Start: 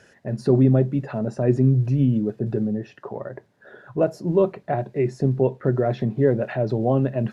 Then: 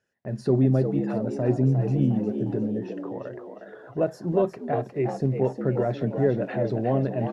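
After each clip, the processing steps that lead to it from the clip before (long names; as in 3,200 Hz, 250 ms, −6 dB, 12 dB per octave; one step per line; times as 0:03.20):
echo with shifted repeats 357 ms, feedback 45%, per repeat +74 Hz, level −8 dB
noise gate −48 dBFS, range −21 dB
level −4 dB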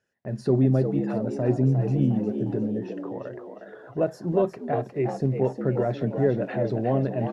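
no processing that can be heard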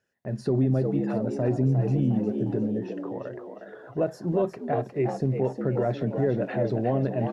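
brickwall limiter −15 dBFS, peak gain reduction 5 dB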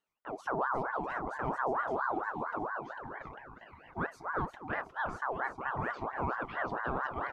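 ring modulator whose carrier an LFO sweeps 920 Hz, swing 45%, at 4.4 Hz
level −7 dB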